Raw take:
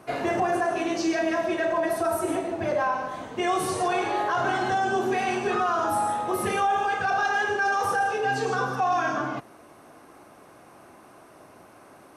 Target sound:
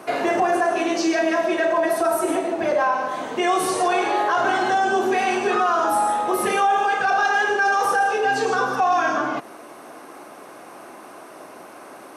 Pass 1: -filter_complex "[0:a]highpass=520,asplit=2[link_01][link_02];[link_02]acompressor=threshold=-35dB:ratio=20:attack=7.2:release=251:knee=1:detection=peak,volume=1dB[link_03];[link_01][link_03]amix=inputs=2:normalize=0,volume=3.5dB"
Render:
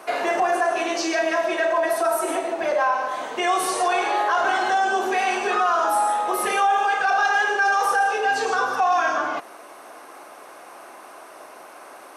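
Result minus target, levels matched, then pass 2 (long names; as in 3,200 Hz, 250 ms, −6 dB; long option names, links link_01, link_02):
250 Hz band −5.5 dB
-filter_complex "[0:a]highpass=250,asplit=2[link_01][link_02];[link_02]acompressor=threshold=-35dB:ratio=20:attack=7.2:release=251:knee=1:detection=peak,volume=1dB[link_03];[link_01][link_03]amix=inputs=2:normalize=0,volume=3.5dB"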